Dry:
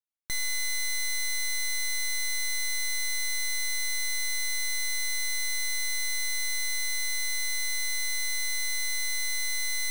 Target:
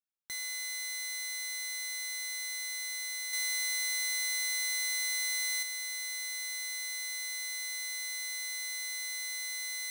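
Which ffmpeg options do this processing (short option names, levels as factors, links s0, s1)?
-filter_complex "[0:a]highpass=f=430:p=1,asettb=1/sr,asplit=3[s0][s1][s2];[s0]atrim=end=3.334[s3];[s1]atrim=start=3.33:end=5.63,asetpts=PTS-STARTPTS,afade=t=in:d=0.004:c=qsin,afade=t=out:st=2.296:d=0.004:c=qsin,acontrast=28[s4];[s2]atrim=start=5.626[s5];[s3][s4]acrossfade=d=0.004:c1=hsin:c2=qsin[s6];[s6][s5]acrossfade=d=0.004:c1=qsin:c2=hsin,volume=0.473"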